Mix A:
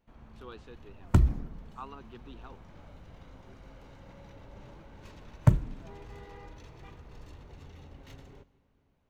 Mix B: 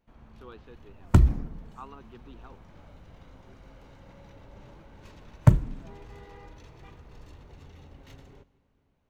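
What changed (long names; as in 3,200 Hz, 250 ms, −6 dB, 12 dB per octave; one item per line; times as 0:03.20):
speech: add high-frequency loss of the air 170 metres
second sound +4.0 dB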